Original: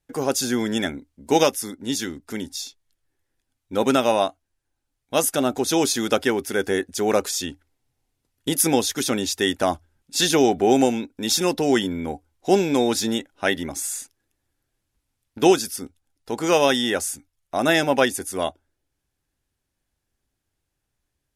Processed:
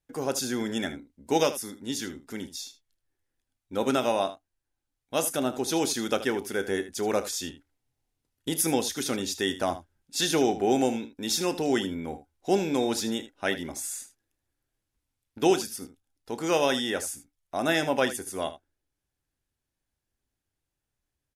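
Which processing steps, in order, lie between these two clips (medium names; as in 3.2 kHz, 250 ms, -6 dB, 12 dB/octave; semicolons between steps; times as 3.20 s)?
early reflections 31 ms -15 dB, 77 ms -14 dB; trim -6.5 dB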